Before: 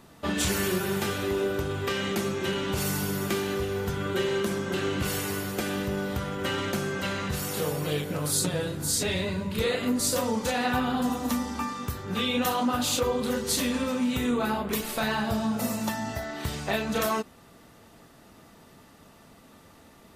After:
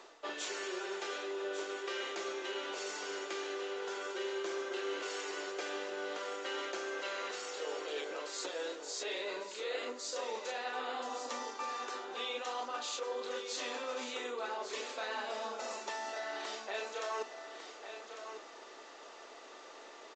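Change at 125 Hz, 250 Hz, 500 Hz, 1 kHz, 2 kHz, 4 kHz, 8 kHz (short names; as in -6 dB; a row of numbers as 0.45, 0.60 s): under -40 dB, -21.0 dB, -9.0 dB, -8.5 dB, -8.0 dB, -9.0 dB, -13.5 dB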